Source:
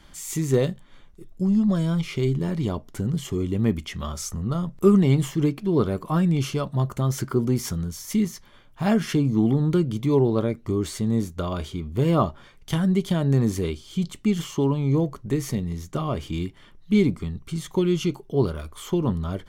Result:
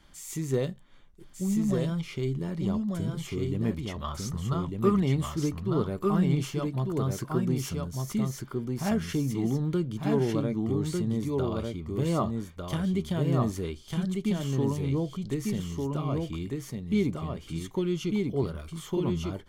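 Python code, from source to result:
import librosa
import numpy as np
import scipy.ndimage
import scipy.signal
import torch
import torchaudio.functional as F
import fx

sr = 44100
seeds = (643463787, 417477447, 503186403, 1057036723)

y = fx.graphic_eq(x, sr, hz=(125, 250, 1000, 2000, 4000, 8000), db=(6, -5, 8, 3, 6, -5), at=(4.04, 5.02))
y = y + 10.0 ** (-3.0 / 20.0) * np.pad(y, (int(1199 * sr / 1000.0), 0))[:len(y)]
y = y * librosa.db_to_amplitude(-7.0)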